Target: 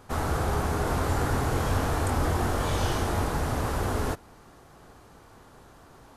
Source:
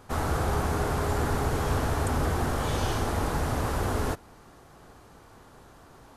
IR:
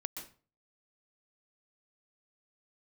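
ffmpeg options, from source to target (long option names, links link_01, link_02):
-filter_complex "[0:a]asettb=1/sr,asplit=3[link_01][link_02][link_03];[link_01]atrim=end=0.834[link_04];[link_02]atrim=start=0.83:end=3.24,asetpts=PTS-STARTPTS,afade=type=in:duration=0.004:curve=qsin,afade=type=out:start_time=2.406:duration=0.004:curve=qsin,asplit=2[link_05][link_06];[link_06]adelay=23,volume=-5.5dB[link_07];[link_05][link_07]amix=inputs=2:normalize=0,atrim=end_sample=106281[link_08];[link_03]atrim=start=3.236[link_09];[link_04][link_08]acrossfade=duration=0.004:curve1=hsin:curve2=qsin[link_10];[link_10][link_09]acrossfade=duration=0.004:curve1=qsin:curve2=hsin"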